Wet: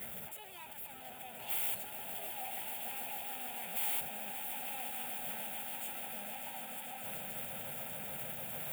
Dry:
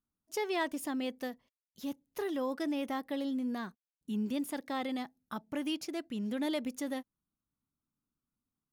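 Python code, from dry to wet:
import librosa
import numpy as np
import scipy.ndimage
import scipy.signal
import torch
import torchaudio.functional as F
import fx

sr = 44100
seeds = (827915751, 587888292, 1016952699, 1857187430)

y = np.sign(x) * np.sqrt(np.mean(np.square(x)))
y = fx.peak_eq(y, sr, hz=4500.0, db=-5.5, octaves=0.56)
y = fx.over_compress(y, sr, threshold_db=-43.0, ratio=-0.5)
y = scipy.signal.sosfilt(scipy.signal.butter(2, 180.0, 'highpass', fs=sr, output='sos'), y)
y = fx.high_shelf(y, sr, hz=9700.0, db=5.5)
y = fx.fixed_phaser(y, sr, hz=1100.0, stages=6)
y = fx.echo_swell(y, sr, ms=147, loudest=8, wet_db=-10)
y = fx.formant_shift(y, sr, semitones=5)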